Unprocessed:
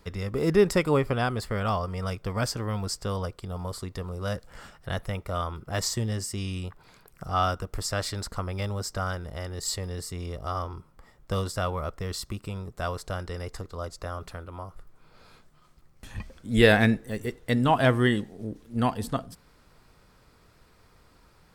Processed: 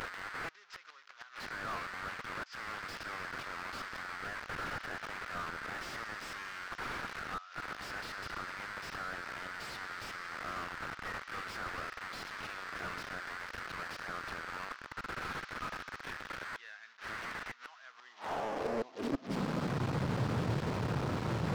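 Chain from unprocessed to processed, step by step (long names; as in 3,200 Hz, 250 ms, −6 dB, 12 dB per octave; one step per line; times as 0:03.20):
linear delta modulator 32 kbit/s, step −20.5 dBFS
four-comb reverb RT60 3.7 s, combs from 30 ms, DRR 19.5 dB
gate with flip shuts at −15 dBFS, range −27 dB
high-pass filter sweep 1,400 Hz → 120 Hz, 0:17.84–0:19.82
slew-rate limiting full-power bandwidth 37 Hz
level −5.5 dB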